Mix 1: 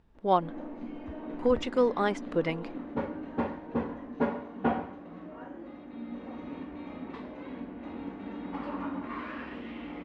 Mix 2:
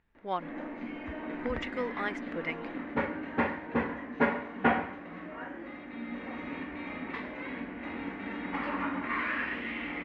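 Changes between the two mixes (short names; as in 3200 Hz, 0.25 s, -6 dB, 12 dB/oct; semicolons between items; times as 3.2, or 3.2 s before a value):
speech -11.5 dB; master: add bell 2000 Hz +14.5 dB 1.2 oct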